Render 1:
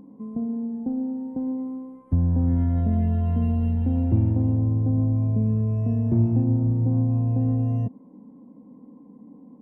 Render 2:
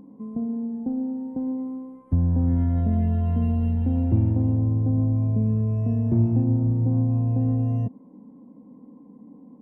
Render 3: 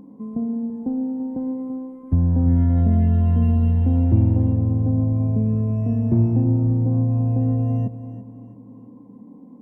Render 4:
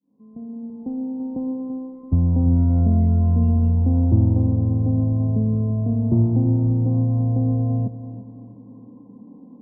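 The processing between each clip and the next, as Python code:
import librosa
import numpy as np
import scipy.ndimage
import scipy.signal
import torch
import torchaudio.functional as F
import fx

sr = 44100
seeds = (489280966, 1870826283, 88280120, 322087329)

y1 = x
y2 = fx.echo_feedback(y1, sr, ms=336, feedback_pct=39, wet_db=-13)
y2 = y2 * 10.0 ** (3.0 / 20.0)
y3 = fx.fade_in_head(y2, sr, length_s=1.4)
y3 = fx.mod_noise(y3, sr, seeds[0], snr_db=35)
y3 = scipy.signal.savgol_filter(y3, 65, 4, mode='constant')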